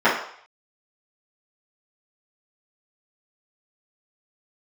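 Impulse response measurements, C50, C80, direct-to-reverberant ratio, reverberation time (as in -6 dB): 5.0 dB, 9.0 dB, -13.0 dB, 0.60 s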